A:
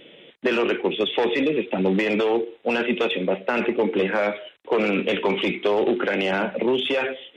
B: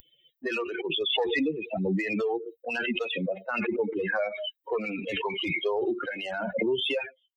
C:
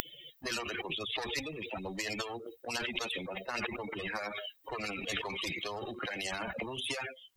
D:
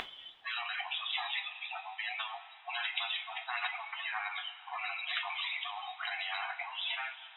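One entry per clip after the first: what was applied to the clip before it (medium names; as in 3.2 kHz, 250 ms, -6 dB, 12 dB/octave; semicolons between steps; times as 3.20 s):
expander on every frequency bin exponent 3; swell ahead of each attack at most 24 dB/s; trim -1.5 dB
spectrum-flattening compressor 4:1; trim +4 dB
coarse spectral quantiser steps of 30 dB; brick-wall FIR band-pass 670–4000 Hz; two-slope reverb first 0.25 s, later 3 s, from -18 dB, DRR 1.5 dB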